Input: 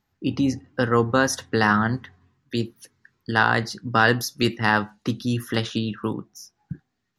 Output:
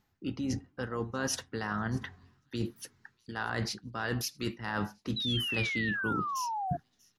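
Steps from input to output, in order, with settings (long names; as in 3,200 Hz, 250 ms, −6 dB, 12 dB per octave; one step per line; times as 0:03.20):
reversed playback
downward compressor 16 to 1, threshold −31 dBFS, peak gain reduction 20 dB
reversed playback
delay with a high-pass on its return 638 ms, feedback 36%, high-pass 4,600 Hz, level −22.5 dB
pitch-shifted copies added −12 semitones −16 dB, −4 semitones −17 dB
sound drawn into the spectrogram fall, 0:05.16–0:06.77, 680–4,000 Hz −35 dBFS
level +1 dB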